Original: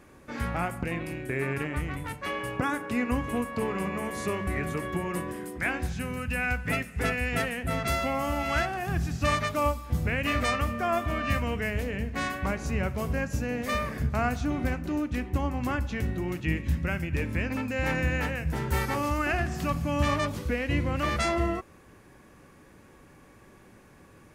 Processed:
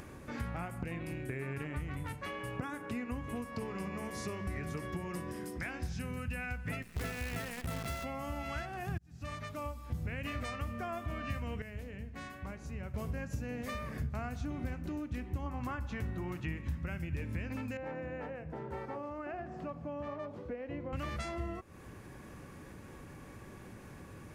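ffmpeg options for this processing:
-filter_complex "[0:a]asettb=1/sr,asplit=3[a][b][c];[a]atrim=end=3.354[d];[b]atrim=start=3.35:end=6.02,asetpts=PTS-STARTPTS,afade=t=in:d=0.004:c=qsin,afade=t=out:st=2.666:d=0.004:c=qsin,equalizer=f=5.3k:t=o:w=0.5:g=9[e];[c]atrim=start=6.016[f];[d][e]acrossfade=d=0.004:c1=hsin:c2=qsin[g];[g][f]acrossfade=d=0.004:c1=qsin:c2=hsin,asplit=3[h][i][j];[h]afade=t=out:st=6.82:d=0.02[k];[i]acrusher=bits=6:dc=4:mix=0:aa=0.000001,afade=t=in:st=6.82:d=0.02,afade=t=out:st=8.03:d=0.02[l];[j]afade=t=in:st=8.03:d=0.02[m];[k][l][m]amix=inputs=3:normalize=0,asettb=1/sr,asplit=3[n][o][p];[n]atrim=end=15.464[q];[o]atrim=start=15.46:end=16.86,asetpts=PTS-STARTPTS,afade=t=in:d=0.004:c=qsin,afade=t=out:st=1.396:d=0.004:c=qsin,equalizer=f=1.1k:t=o:w=1.2:g=8[r];[p]atrim=start=16.856[s];[q][r]acrossfade=d=0.004:c1=hsin:c2=qsin[t];[t][s]acrossfade=d=0.004:c1=qsin:c2=hsin,asettb=1/sr,asplit=3[u][v][w];[u]atrim=end=17.774[x];[v]atrim=start=17.77:end=20.93,asetpts=PTS-STARTPTS,afade=t=in:d=0.004:c=qsin,afade=t=out:st=3.156:d=0.004:c=qsin,bandpass=f=560:t=q:w=1.2[y];[w]atrim=start=20.926[z];[x][y]acrossfade=d=0.004:c1=hsin:c2=qsin[aa];[aa][z]acrossfade=d=0.004:c1=qsin:c2=hsin,asplit=4[ab][ac][ad][ae];[ab]atrim=end=8.98,asetpts=PTS-STARTPTS,afade=t=out:st=8.976:d=0.004:c=hsin[af];[ac]atrim=start=8.98:end=11.622,asetpts=PTS-STARTPTS,afade=t=in:d=1.43[ag];[ad]atrim=start=11.618:end=12.942,asetpts=PTS-STARTPTS,volume=-11.5dB[ah];[ae]atrim=start=12.938[ai];[af][ag]concat=n=2:v=0:a=1[aj];[aj][ah]acrossfade=d=0.004:c1=hsin:c2=hsin[ak];[ak][ai]acrossfade=d=0.004:c1=hsin:c2=hsin,acompressor=threshold=-34dB:ratio=4,equalizer=f=100:w=0.67:g=5.5,acompressor=mode=upward:threshold=-37dB:ratio=2.5,volume=-4.5dB"

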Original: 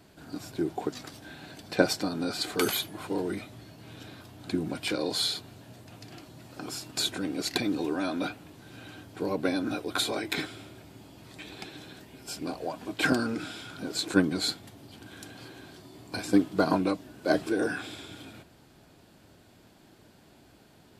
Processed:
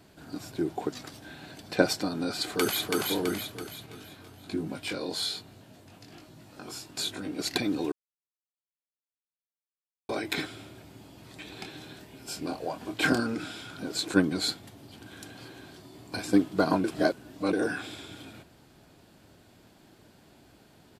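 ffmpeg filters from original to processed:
-filter_complex "[0:a]asplit=2[a][b];[b]afade=t=in:st=2.43:d=0.01,afade=t=out:st=2.96:d=0.01,aecho=0:1:330|660|990|1320|1650|1980|2310:0.794328|0.397164|0.198582|0.099291|0.0496455|0.0248228|0.0124114[c];[a][c]amix=inputs=2:normalize=0,asettb=1/sr,asplit=3[d][e][f];[d]atrim=end=3.864[g];[e]atrim=start=3.86:end=7.39,asetpts=PTS-STARTPTS,afade=t=in:d=0.004:c=qsin,afade=t=out:st=3.526:d=0.004:c=qsin,flanger=delay=19:depth=2.8:speed=1.2[h];[f]atrim=start=7.386[i];[g][h]acrossfade=d=0.004:c1=hsin:c2=qsin[j];[j][i]acrossfade=d=0.004:c1=qsin:c2=hsin,asettb=1/sr,asplit=3[k][l][m];[k]atrim=end=11.534[n];[l]atrim=start=11.53:end=13.2,asetpts=PTS-STARTPTS,afade=t=in:d=0.004:c=qsin,afade=t=out:st=1.666:d=0.004:c=qsin,asplit=2[o][p];[p]adelay=26,volume=-8dB[q];[o][q]amix=inputs=2:normalize=0,atrim=end_sample=73647[r];[m]atrim=start=13.196[s];[n][r]acrossfade=d=0.004:c1=hsin:c2=qsin[t];[t][s]acrossfade=d=0.004:c1=qsin:c2=hsin,asplit=5[u][v][w][x][y];[u]atrim=end=7.92,asetpts=PTS-STARTPTS,afade=t=out:st=7.916:d=0.004:c=hsin[z];[v]atrim=start=7.92:end=10.09,asetpts=PTS-STARTPTS,volume=0[aa];[w]atrim=start=10.09:end=16.842,asetpts=PTS-STARTPTS,afade=t=in:d=0.004:c=hsin[ab];[x]atrim=start=16.838:end=17.532,asetpts=PTS-STARTPTS,areverse[ac];[y]atrim=start=17.528[ad];[z][aa][ab]concat=n=3:v=0:a=1[ae];[ae][ac]acrossfade=d=0.004:c1=hsin:c2=hsin[af];[af][ad]acrossfade=d=0.004:c1=hsin:c2=hsin"

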